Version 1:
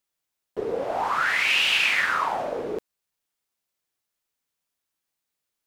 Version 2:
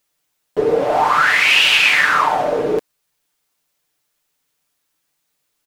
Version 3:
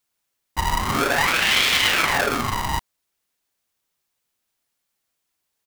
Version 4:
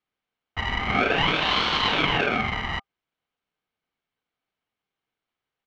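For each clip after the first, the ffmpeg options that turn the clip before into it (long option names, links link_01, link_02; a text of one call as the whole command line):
ffmpeg -i in.wav -filter_complex "[0:a]aecho=1:1:6.7:0.5,asplit=2[link_01][link_02];[link_02]alimiter=limit=-17.5dB:level=0:latency=1:release=490,volume=1.5dB[link_03];[link_01][link_03]amix=inputs=2:normalize=0,volume=4dB" out.wav
ffmpeg -i in.wav -af "aeval=exprs='val(0)*sgn(sin(2*PI*490*n/s))':channel_layout=same,volume=-6dB" out.wav
ffmpeg -i in.wav -af "highpass=130,equalizer=frequency=210:width_type=q:width=4:gain=10,equalizer=frequency=300:width_type=q:width=4:gain=8,equalizer=frequency=550:width_type=q:width=4:gain=9,equalizer=frequency=1200:width_type=q:width=4:gain=9,equalizer=frequency=2000:width_type=q:width=4:gain=7,equalizer=frequency=3900:width_type=q:width=4:gain=-6,lowpass=frequency=4100:width=0.5412,lowpass=frequency=4100:width=1.3066,aeval=exprs='val(0)*sin(2*PI*1000*n/s)':channel_layout=same,volume=-4dB" out.wav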